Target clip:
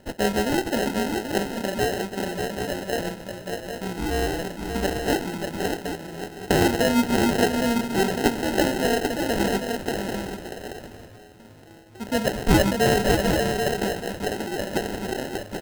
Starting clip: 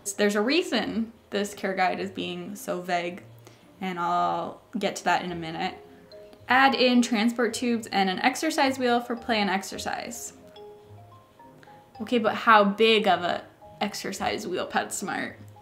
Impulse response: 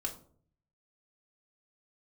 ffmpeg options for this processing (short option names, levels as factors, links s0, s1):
-filter_complex "[0:a]asplit=2[s0][s1];[s1]aecho=0:1:131|587|783:0.211|0.501|0.422[s2];[s0][s2]amix=inputs=2:normalize=0,acrusher=samples=38:mix=1:aa=0.000001,asplit=2[s3][s4];[s4]asplit=3[s5][s6][s7];[s5]adelay=478,afreqshift=-56,volume=0.0891[s8];[s6]adelay=956,afreqshift=-112,volume=0.0417[s9];[s7]adelay=1434,afreqshift=-168,volume=0.0197[s10];[s8][s9][s10]amix=inputs=3:normalize=0[s11];[s3][s11]amix=inputs=2:normalize=0"